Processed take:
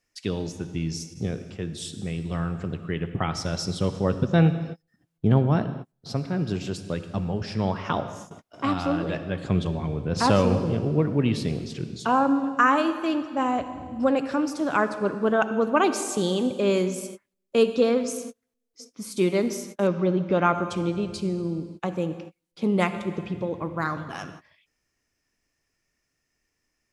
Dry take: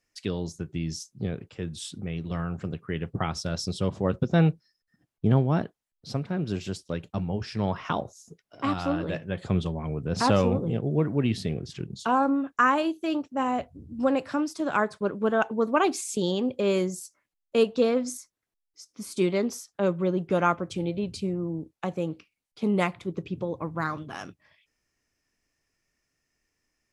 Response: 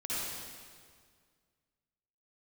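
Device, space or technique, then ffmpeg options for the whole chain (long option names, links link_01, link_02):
keyed gated reverb: -filter_complex "[0:a]asplit=3[link_01][link_02][link_03];[1:a]atrim=start_sample=2205[link_04];[link_02][link_04]afir=irnorm=-1:irlink=0[link_05];[link_03]apad=whole_len=1187327[link_06];[link_05][link_06]sidechaingate=range=-40dB:threshold=-51dB:ratio=16:detection=peak,volume=-14dB[link_07];[link_01][link_07]amix=inputs=2:normalize=0,asettb=1/sr,asplit=3[link_08][link_09][link_10];[link_08]atrim=end=19.874[link_11];[link_09]atrim=start=19.87:end=20.55,asetpts=PTS-STARTPTS,afade=type=in:duration=0.004:curve=qsin,afade=type=out:start_time=0.676:duration=0.004:curve=qsin,lowpass=frequency=5300:width=0.5412,lowpass=frequency=5300:width=1.3066[link_12];[link_10]atrim=start=20.546[link_13];[link_11][link_12]acrossfade=duration=0.004:curve1=hsin:curve2=qsin[link_14];[link_14][link_13]acrossfade=duration=0.004:curve1=qsin:curve2=hsin,volume=1dB"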